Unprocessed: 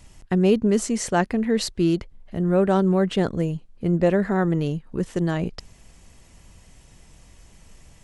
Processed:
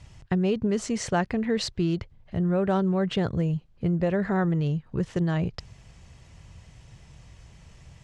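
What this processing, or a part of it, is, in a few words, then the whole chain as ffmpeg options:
jukebox: -af "lowpass=5600,lowshelf=frequency=170:width_type=q:width=1.5:gain=10,acompressor=threshold=-19dB:ratio=6,highpass=frequency=160:poles=1"

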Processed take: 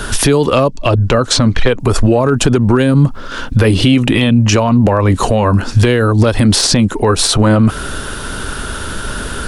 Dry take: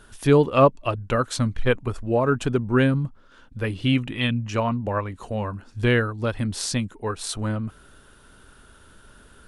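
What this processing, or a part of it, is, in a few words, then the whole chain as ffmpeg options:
mastering chain: -filter_complex "[0:a]asettb=1/sr,asplit=3[link_01][link_02][link_03];[link_01]atrim=end=0.684[link_04];[link_02]atrim=start=0.68:end=1.8,asetpts=PTS-STARTPTS,afade=type=in:duration=0.004:curve=qsin,afade=type=out:start_time=1.116:duration=0.004:curve=qsin,lowpass=6500[link_05];[link_03]atrim=start=1.796[link_06];[link_04][link_05]acrossfade=duration=0.004:curve1=hsin:curve2=qsin[link_07];[link_07][link_06]acrossfade=duration=0.004:curve1=qsin:curve2=hsin,equalizer=frequency=5000:width_type=o:width=0.79:gain=3,acrossover=split=280|930|4200[link_08][link_09][link_10][link_11];[link_08]acompressor=threshold=-33dB:ratio=4[link_12];[link_09]acompressor=threshold=-29dB:ratio=4[link_13];[link_10]acompressor=threshold=-41dB:ratio=4[link_14];[link_11]acompressor=threshold=-41dB:ratio=4[link_15];[link_12][link_13][link_14][link_15]amix=inputs=4:normalize=0,acompressor=threshold=-34dB:ratio=2,asoftclip=type=hard:threshold=-23dB,alimiter=level_in=29.5dB:limit=-1dB:release=50:level=0:latency=1,volume=-1dB"

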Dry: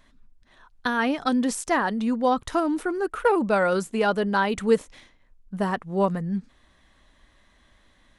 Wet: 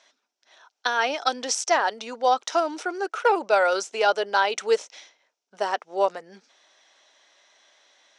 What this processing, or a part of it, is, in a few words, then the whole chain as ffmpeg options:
phone speaker on a table: -af "highpass=frequency=480:width=0.5412,highpass=frequency=480:width=1.3066,equalizer=frequency=510:width_type=q:width=4:gain=-4,equalizer=frequency=1100:width_type=q:width=4:gain=-8,equalizer=frequency=1800:width_type=q:width=4:gain=-6,equalizer=frequency=5700:width_type=q:width=4:gain=10,lowpass=frequency=7200:width=0.5412,lowpass=frequency=7200:width=1.3066,volume=5.5dB"

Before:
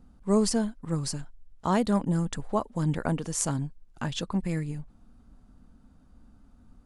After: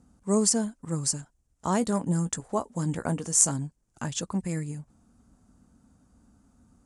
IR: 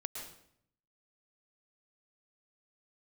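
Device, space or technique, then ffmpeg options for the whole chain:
budget condenser microphone: -filter_complex "[0:a]lowpass=8400,asettb=1/sr,asplit=3[link_01][link_02][link_03];[link_01]atrim=end=1.794[link_04];[link_02]atrim=start=1.79:end=3.52,asetpts=PTS-STARTPTS,afade=type=in:duration=0.004:curve=qsin,afade=type=out:start_time=1.726:duration=0.004:curve=qsin,asplit=2[link_05][link_06];[link_06]adelay=17,volume=-11.5dB[link_07];[link_05][link_07]amix=inputs=2:normalize=0,atrim=end_sample=76293[link_08];[link_03]atrim=start=3.516[link_09];[link_04][link_08]acrossfade=duration=0.004:curve1=hsin:curve2=qsin[link_10];[link_10][link_09]acrossfade=duration=0.004:curve1=qsin:curve2=hsin,highpass=65,highshelf=frequency=5400:width_type=q:width=1.5:gain=11,volume=-1dB"

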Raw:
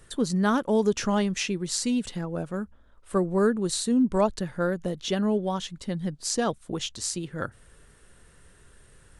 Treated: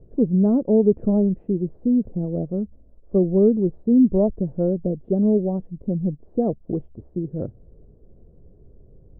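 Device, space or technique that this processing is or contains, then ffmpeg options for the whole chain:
under water: -af "lowpass=frequency=490:width=0.5412,lowpass=frequency=490:width=1.3066,equalizer=frequency=680:width_type=o:width=0.37:gain=6,volume=7dB"

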